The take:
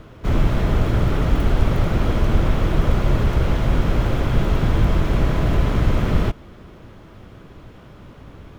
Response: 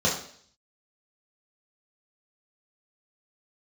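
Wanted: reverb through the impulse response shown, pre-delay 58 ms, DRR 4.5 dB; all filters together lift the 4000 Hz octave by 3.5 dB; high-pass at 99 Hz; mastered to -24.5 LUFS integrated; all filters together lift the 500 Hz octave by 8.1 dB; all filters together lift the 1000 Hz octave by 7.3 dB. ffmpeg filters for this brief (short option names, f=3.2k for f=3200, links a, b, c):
-filter_complex "[0:a]highpass=99,equalizer=f=500:t=o:g=8.5,equalizer=f=1k:t=o:g=6.5,equalizer=f=4k:t=o:g=4,asplit=2[a][b];[1:a]atrim=start_sample=2205,adelay=58[c];[b][c]afir=irnorm=-1:irlink=0,volume=-18dB[d];[a][d]amix=inputs=2:normalize=0,volume=-7.5dB"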